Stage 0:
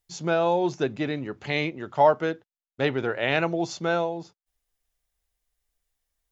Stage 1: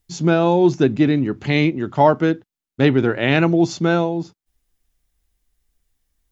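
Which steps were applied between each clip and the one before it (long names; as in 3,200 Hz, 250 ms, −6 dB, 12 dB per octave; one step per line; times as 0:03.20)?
low shelf with overshoot 400 Hz +7 dB, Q 1.5
level +5.5 dB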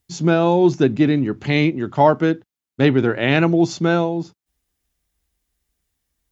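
high-pass filter 52 Hz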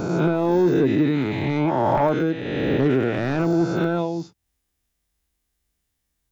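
peak hold with a rise ahead of every peak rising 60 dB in 1.84 s
de-essing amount 95%
level −4.5 dB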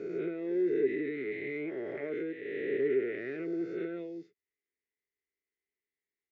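pair of resonant band-passes 910 Hz, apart 2.3 octaves
level −3.5 dB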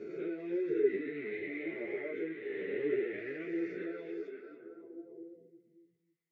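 spectral magnitudes quantised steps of 15 dB
echo through a band-pass that steps 273 ms, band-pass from 2,800 Hz, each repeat −0.7 octaves, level −1 dB
string-ensemble chorus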